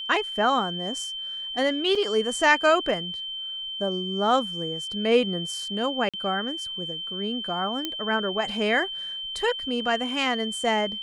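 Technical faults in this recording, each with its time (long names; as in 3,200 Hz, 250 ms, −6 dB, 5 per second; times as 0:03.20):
whistle 3,100 Hz −31 dBFS
0:01.95: drop-out 4.3 ms
0:06.09–0:06.14: drop-out 46 ms
0:07.85: click −13 dBFS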